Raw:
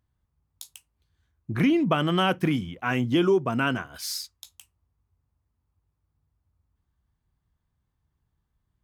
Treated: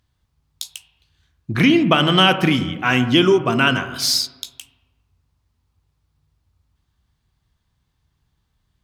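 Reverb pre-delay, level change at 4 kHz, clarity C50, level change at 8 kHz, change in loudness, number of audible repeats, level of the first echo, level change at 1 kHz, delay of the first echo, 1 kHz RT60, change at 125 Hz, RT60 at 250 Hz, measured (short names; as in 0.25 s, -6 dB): 35 ms, +15.0 dB, 11.0 dB, +11.5 dB, +8.5 dB, none, none, +8.5 dB, none, 1.2 s, +7.0 dB, 1.3 s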